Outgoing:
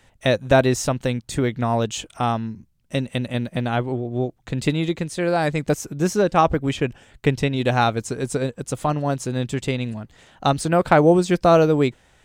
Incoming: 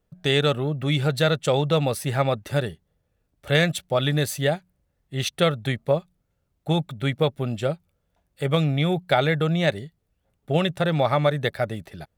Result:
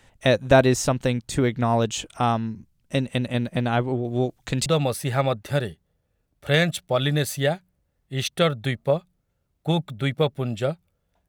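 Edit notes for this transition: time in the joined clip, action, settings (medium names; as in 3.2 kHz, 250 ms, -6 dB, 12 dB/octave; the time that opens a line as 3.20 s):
outgoing
4.04–4.66 s: treble shelf 2 kHz +9.5 dB
4.66 s: go over to incoming from 1.67 s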